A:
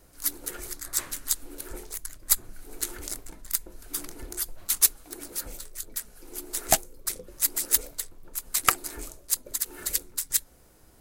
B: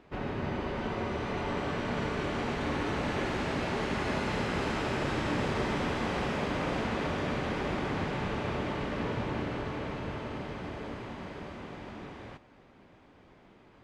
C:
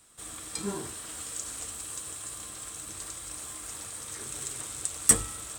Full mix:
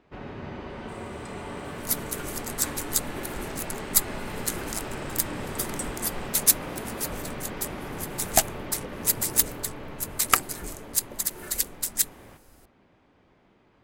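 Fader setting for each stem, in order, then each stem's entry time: +1.0 dB, -4.0 dB, -16.0 dB; 1.65 s, 0.00 s, 0.70 s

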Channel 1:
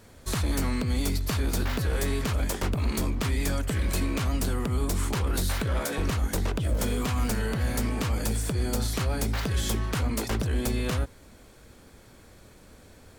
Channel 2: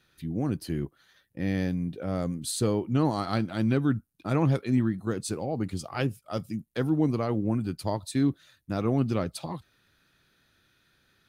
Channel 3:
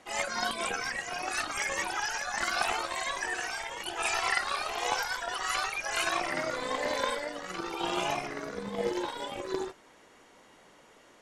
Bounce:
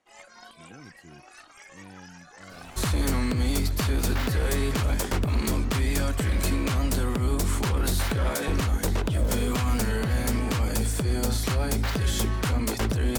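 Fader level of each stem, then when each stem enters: +2.0 dB, -19.5 dB, -17.0 dB; 2.50 s, 0.35 s, 0.00 s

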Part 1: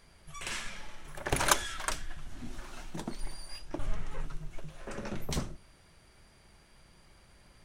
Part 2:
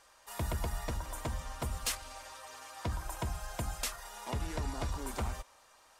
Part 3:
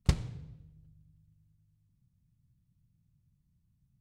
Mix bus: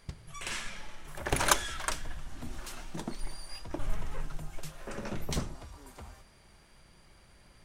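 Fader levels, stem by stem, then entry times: +0.5 dB, -12.0 dB, -16.0 dB; 0.00 s, 0.80 s, 0.00 s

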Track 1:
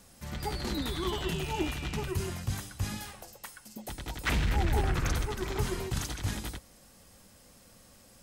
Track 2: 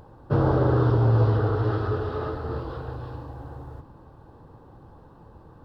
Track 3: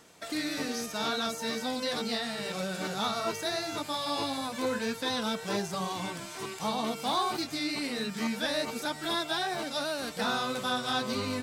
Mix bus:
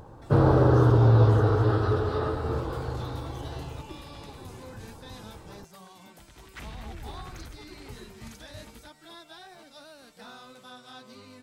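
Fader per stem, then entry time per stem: -13.5 dB, +1.5 dB, -16.5 dB; 2.30 s, 0.00 s, 0.00 s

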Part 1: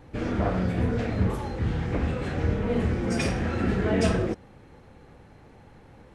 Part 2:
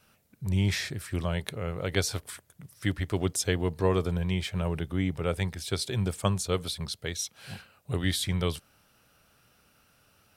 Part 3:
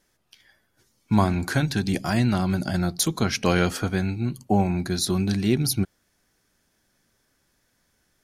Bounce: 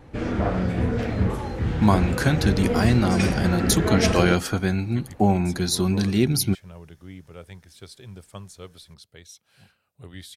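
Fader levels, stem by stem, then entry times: +2.0 dB, -13.0 dB, +1.5 dB; 0.00 s, 2.10 s, 0.70 s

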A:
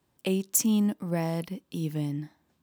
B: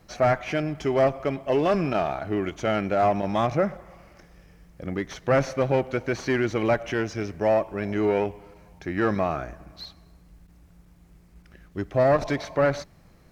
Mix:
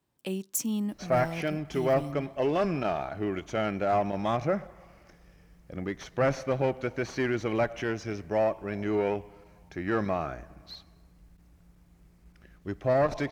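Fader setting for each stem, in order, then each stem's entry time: -6.0 dB, -4.5 dB; 0.00 s, 0.90 s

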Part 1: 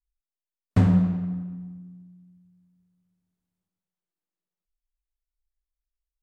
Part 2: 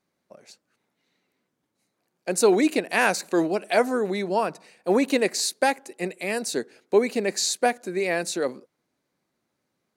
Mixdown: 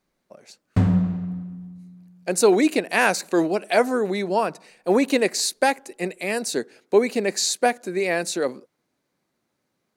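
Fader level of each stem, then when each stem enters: 0.0 dB, +2.0 dB; 0.00 s, 0.00 s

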